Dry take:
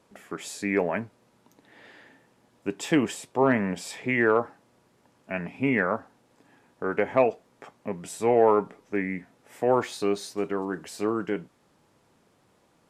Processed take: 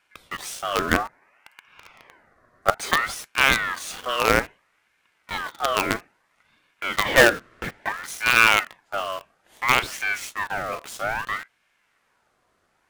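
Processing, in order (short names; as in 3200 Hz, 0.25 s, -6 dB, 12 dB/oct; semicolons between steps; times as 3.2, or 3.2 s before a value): added harmonics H 2 -27 dB, 4 -26 dB, 5 -36 dB, 7 -40 dB, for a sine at -8.5 dBFS; 0.91–2.78 ten-band EQ 125 Hz +5 dB, 250 Hz +5 dB, 500 Hz +5 dB, 1000 Hz +12 dB, 2000 Hz -12 dB, 8000 Hz -4 dB; 7.05–7.89 overdrive pedal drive 25 dB, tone 1200 Hz, clips at -8 dBFS; in parallel at -4.5 dB: companded quantiser 2-bit; on the sum: ring modulator with a swept carrier 1400 Hz, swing 40%, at 0.6 Hz; gain -1 dB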